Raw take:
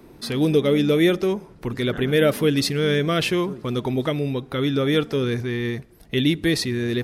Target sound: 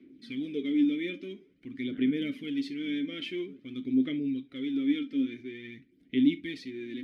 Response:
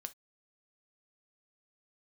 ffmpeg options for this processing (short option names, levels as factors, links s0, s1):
-filter_complex "[0:a]asplit=3[s0][s1][s2];[s0]bandpass=f=270:t=q:w=8,volume=1[s3];[s1]bandpass=f=2290:t=q:w=8,volume=0.501[s4];[s2]bandpass=f=3010:t=q:w=8,volume=0.355[s5];[s3][s4][s5]amix=inputs=3:normalize=0,aphaser=in_gain=1:out_gain=1:delay=3.8:decay=0.53:speed=0.49:type=sinusoidal[s6];[1:a]atrim=start_sample=2205[s7];[s6][s7]afir=irnorm=-1:irlink=0"